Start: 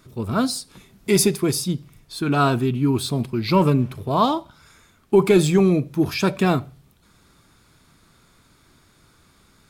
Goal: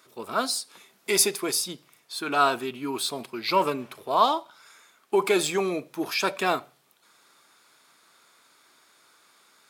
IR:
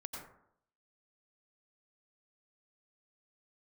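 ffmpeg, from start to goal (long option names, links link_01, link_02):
-af "highpass=560"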